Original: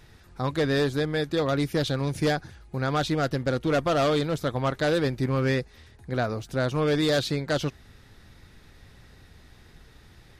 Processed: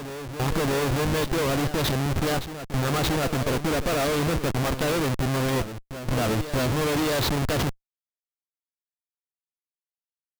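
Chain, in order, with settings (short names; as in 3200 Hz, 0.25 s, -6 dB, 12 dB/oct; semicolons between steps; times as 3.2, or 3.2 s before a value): Schmitt trigger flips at -32 dBFS; reverse echo 0.628 s -11 dB; gain +3.5 dB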